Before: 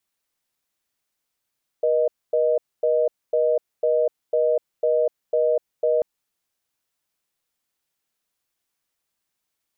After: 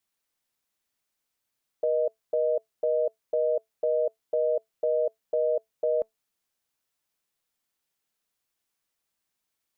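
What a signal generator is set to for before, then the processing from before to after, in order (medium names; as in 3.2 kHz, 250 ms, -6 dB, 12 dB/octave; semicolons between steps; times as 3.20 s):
call progress tone reorder tone, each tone -19.5 dBFS 4.19 s
dynamic bell 580 Hz, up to +3 dB, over -29 dBFS; peak limiter -16 dBFS; feedback comb 220 Hz, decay 0.16 s, harmonics all, mix 30%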